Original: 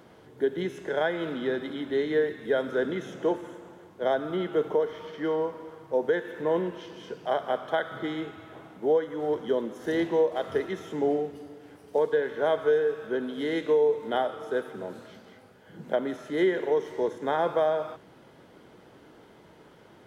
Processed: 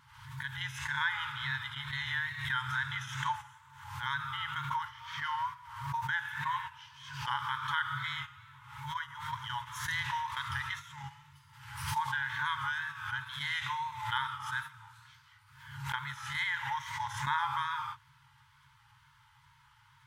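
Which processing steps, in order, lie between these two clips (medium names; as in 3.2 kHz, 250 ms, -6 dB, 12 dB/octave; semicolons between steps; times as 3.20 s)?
FFT band-reject 140–850 Hz; gate -44 dBFS, range -9 dB; peaking EQ 230 Hz +13 dB 0.68 oct; in parallel at 0 dB: peak limiter -30.5 dBFS, peak gain reduction 11 dB; on the sum: wow and flutter 54 cents; swell ahead of each attack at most 63 dB/s; trim -1.5 dB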